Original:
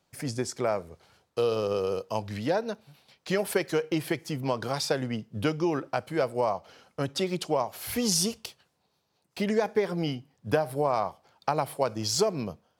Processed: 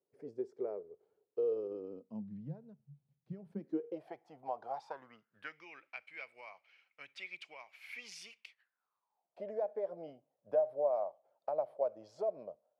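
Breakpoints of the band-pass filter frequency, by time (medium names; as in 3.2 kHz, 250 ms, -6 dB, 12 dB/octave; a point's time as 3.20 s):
band-pass filter, Q 8.2
1.50 s 420 Hz
2.59 s 140 Hz
3.44 s 140 Hz
4.09 s 750 Hz
4.73 s 750 Hz
5.69 s 2.3 kHz
8.46 s 2.3 kHz
9.40 s 600 Hz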